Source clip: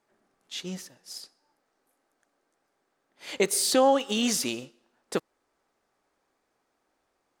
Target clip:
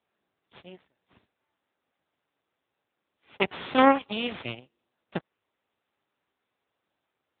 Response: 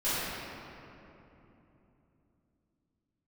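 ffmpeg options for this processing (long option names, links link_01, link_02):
-af "aeval=exprs='0.316*(cos(1*acos(clip(val(0)/0.316,-1,1)))-cos(1*PI/2))+0.00708*(cos(2*acos(clip(val(0)/0.316,-1,1)))-cos(2*PI/2))+0.1*(cos(3*acos(clip(val(0)/0.316,-1,1)))-cos(3*PI/2))+0.00794*(cos(4*acos(clip(val(0)/0.316,-1,1)))-cos(4*PI/2))+0.0178*(cos(8*acos(clip(val(0)/0.316,-1,1)))-cos(8*PI/2))':channel_layout=same,volume=6.5dB" -ar 8000 -c:a libopencore_amrnb -b:a 10200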